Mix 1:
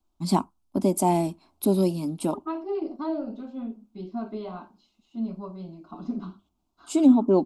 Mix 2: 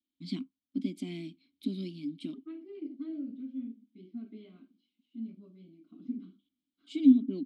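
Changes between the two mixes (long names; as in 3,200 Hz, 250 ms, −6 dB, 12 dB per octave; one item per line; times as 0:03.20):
first voice: add octave-band graphic EQ 125/500/4,000 Hz +5/−9/+11 dB
master: add formant filter i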